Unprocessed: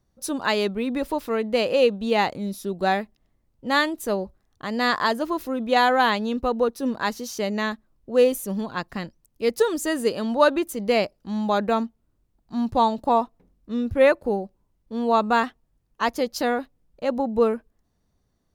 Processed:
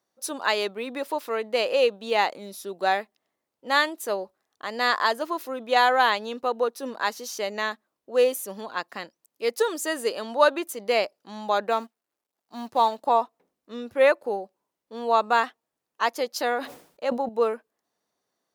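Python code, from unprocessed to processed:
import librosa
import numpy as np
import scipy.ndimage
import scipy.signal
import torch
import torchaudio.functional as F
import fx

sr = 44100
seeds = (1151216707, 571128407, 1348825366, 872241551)

y = fx.law_mismatch(x, sr, coded='A', at=(11.71, 13.02))
y = scipy.signal.sosfilt(scipy.signal.butter(2, 470.0, 'highpass', fs=sr, output='sos'), y)
y = fx.sustainer(y, sr, db_per_s=110.0, at=(16.51, 17.29))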